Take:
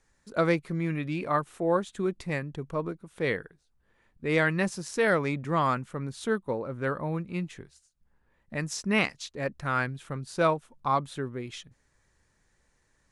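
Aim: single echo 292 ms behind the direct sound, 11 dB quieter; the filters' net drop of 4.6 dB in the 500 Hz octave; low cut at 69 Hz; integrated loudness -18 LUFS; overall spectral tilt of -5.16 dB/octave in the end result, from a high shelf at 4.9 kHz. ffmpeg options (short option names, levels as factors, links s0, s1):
-af "highpass=69,equalizer=f=500:t=o:g=-5.5,highshelf=f=4900:g=-8,aecho=1:1:292:0.282,volume=4.73"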